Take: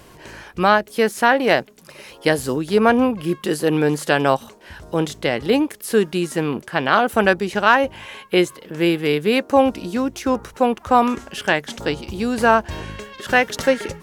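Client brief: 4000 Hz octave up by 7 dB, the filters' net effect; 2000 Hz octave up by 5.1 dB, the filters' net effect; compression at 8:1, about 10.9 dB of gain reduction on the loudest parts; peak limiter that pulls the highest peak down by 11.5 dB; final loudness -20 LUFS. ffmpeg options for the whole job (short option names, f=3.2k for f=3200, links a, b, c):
-af "equalizer=f=2k:t=o:g=5,equalizer=f=4k:t=o:g=7.5,acompressor=threshold=-18dB:ratio=8,volume=6.5dB,alimiter=limit=-8dB:level=0:latency=1"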